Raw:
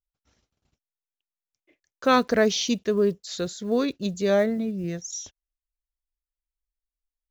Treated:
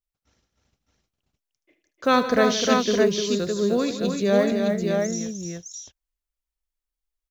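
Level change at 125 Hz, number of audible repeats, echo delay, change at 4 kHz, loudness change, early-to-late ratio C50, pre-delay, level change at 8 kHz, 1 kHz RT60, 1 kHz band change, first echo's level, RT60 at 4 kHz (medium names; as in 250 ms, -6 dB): +3.0 dB, 5, 75 ms, +2.5 dB, +2.5 dB, no reverb, no reverb, no reading, no reverb, +2.5 dB, -13.0 dB, no reverb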